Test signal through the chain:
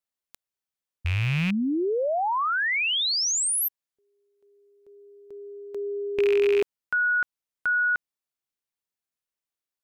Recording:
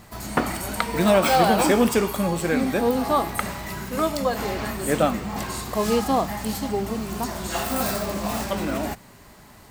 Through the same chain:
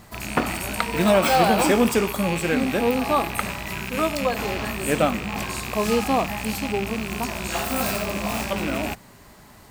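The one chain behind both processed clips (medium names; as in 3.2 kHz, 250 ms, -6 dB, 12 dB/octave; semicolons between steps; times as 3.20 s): rattle on loud lows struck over -34 dBFS, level -19 dBFS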